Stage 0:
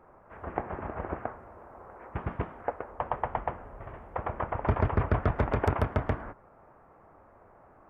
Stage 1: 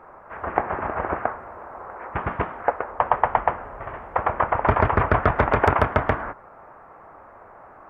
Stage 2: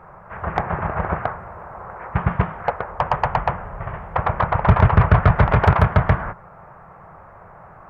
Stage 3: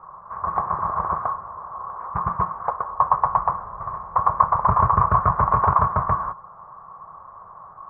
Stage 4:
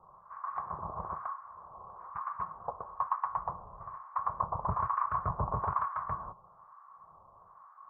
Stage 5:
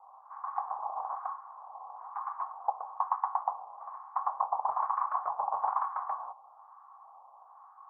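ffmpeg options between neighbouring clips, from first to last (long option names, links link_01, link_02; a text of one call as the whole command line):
ffmpeg -i in.wav -af "equalizer=frequency=1400:width=0.38:gain=10.5,volume=3dB" out.wav
ffmpeg -i in.wav -af "acontrast=73,lowshelf=frequency=210:width_type=q:width=3:gain=7,volume=-4.5dB" out.wav
ffmpeg -i in.wav -af "lowpass=frequency=1100:width_type=q:width=12,volume=-10.5dB" out.wav
ffmpeg -i in.wav -filter_complex "[0:a]acrossover=split=950[link_01][link_02];[link_01]aeval=exprs='val(0)*(1-1/2+1/2*cos(2*PI*1.1*n/s))':channel_layout=same[link_03];[link_02]aeval=exprs='val(0)*(1-1/2-1/2*cos(2*PI*1.1*n/s))':channel_layout=same[link_04];[link_03][link_04]amix=inputs=2:normalize=0,volume=-8.5dB" out.wav
ffmpeg -i in.wav -af "highpass=frequency=790:width_type=q:width=9.3,volume=-6.5dB" out.wav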